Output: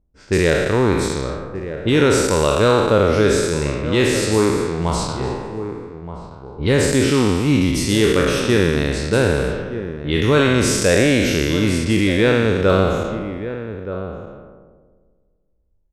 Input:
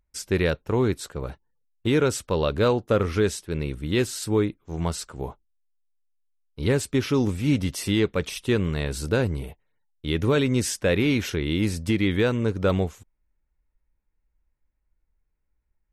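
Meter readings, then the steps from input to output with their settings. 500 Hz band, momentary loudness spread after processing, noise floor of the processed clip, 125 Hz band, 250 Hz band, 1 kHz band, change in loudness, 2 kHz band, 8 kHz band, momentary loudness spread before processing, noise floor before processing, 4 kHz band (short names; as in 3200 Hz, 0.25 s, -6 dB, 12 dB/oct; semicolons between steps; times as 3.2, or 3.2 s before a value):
+8.5 dB, 13 LU, -62 dBFS, +6.0 dB, +7.0 dB, +10.5 dB, +7.0 dB, +9.5 dB, +9.0 dB, 9 LU, -75 dBFS, +9.0 dB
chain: spectral trails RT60 1.87 s; LPF 11000 Hz 12 dB/oct; low-pass opened by the level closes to 570 Hz, open at -18.5 dBFS; outdoor echo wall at 210 m, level -11 dB; gain +4 dB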